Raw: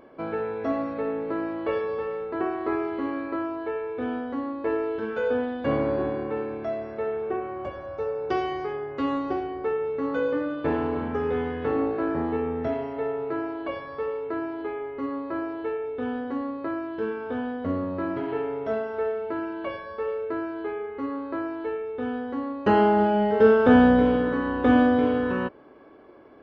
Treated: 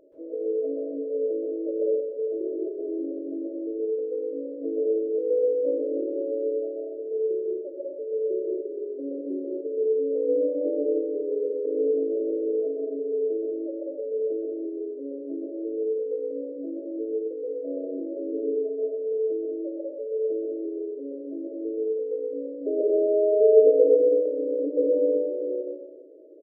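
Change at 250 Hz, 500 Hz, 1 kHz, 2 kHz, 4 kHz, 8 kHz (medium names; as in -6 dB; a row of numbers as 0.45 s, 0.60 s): -6.5 dB, +3.0 dB, under -30 dB, under -40 dB, under -40 dB, no reading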